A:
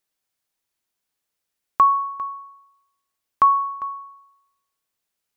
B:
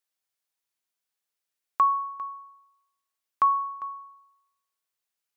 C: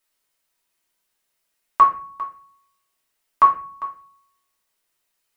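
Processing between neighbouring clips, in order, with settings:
low-shelf EQ 430 Hz −8.5 dB; level −5 dB
convolution reverb RT60 0.40 s, pre-delay 3 ms, DRR −5 dB; level +6 dB

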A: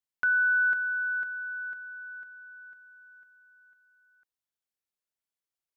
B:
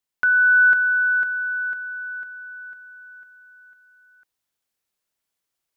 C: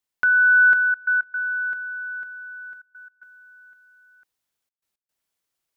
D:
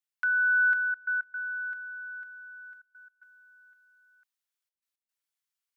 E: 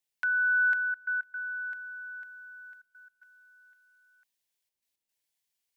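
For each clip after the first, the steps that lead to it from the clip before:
automatic gain control gain up to 4 dB; level +6.5 dB
gate pattern "xxxxxxx.x.xxxx" 112 BPM −24 dB
high-pass filter 1,100 Hz 12 dB per octave; level −7.5 dB
parametric band 1,300 Hz −13 dB 0.43 octaves; level +5.5 dB

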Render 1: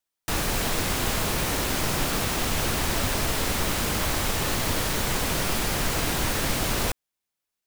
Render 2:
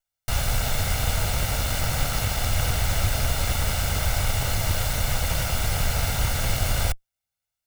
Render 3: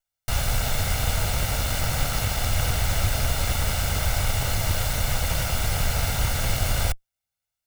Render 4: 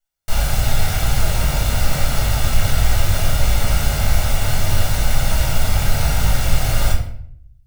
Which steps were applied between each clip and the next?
lower of the sound and its delayed copy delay 1.4 ms; low shelf with overshoot 140 Hz +6.5 dB, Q 1.5
no processing that can be heard
rectangular room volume 110 cubic metres, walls mixed, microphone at 1.4 metres; level −2 dB

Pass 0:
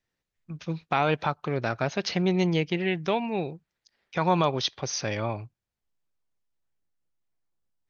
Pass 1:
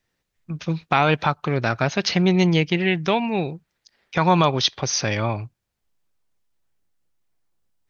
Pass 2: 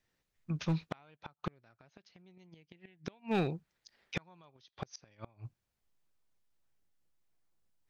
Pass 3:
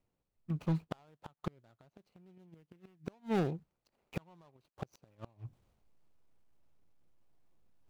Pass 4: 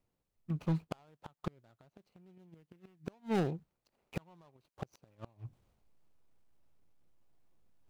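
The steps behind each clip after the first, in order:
dynamic equaliser 500 Hz, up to −4 dB, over −37 dBFS, Q 0.82; level +8 dB
gate with flip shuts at −12 dBFS, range −37 dB; hard clipping −20 dBFS, distortion −11 dB; level −5.5 dB
running median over 25 samples; reversed playback; upward compression, threshold −56 dBFS; reversed playback
stylus tracing distortion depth 0.06 ms

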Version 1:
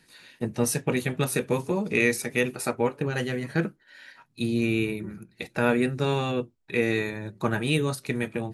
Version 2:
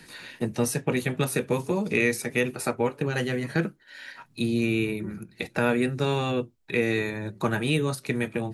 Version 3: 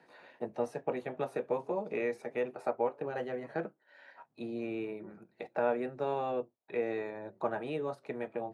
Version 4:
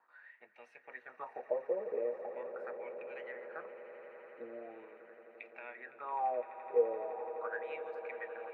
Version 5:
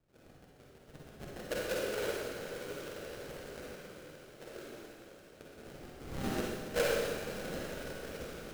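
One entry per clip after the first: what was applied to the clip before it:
multiband upward and downward compressor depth 40%
resonant band-pass 680 Hz, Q 2.2
LFO wah 0.41 Hz 480–2,400 Hz, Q 8.7; echo that builds up and dies away 85 ms, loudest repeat 8, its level −17.5 dB; level +6.5 dB
sample-rate reduction 1,000 Hz, jitter 20%; convolution reverb RT60 1.5 s, pre-delay 42 ms, DRR −3.5 dB; level −4.5 dB

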